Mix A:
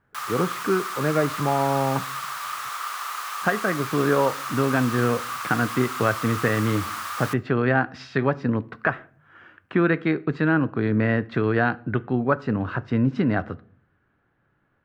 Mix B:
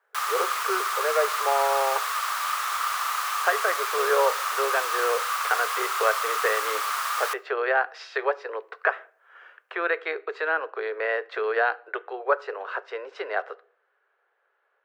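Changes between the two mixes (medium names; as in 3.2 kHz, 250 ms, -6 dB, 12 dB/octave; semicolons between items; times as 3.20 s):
background +4.0 dB; master: add steep high-pass 410 Hz 72 dB/octave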